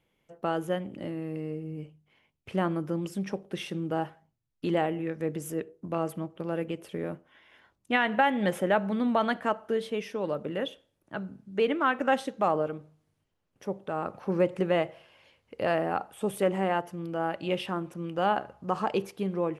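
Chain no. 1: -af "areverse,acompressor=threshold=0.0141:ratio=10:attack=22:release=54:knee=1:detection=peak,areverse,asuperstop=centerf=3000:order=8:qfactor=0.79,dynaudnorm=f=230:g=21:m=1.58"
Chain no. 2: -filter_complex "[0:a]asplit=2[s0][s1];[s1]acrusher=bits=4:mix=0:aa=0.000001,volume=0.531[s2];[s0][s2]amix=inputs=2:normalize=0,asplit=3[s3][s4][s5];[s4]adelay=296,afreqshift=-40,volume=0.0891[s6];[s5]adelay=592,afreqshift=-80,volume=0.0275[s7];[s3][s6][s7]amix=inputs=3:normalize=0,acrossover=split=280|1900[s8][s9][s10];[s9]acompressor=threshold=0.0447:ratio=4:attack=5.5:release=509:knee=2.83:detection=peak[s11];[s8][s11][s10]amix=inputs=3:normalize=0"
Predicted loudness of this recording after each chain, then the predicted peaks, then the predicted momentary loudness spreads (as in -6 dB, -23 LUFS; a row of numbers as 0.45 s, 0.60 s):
-35.5 LUFS, -30.0 LUFS; -17.5 dBFS, -11.5 dBFS; 7 LU, 11 LU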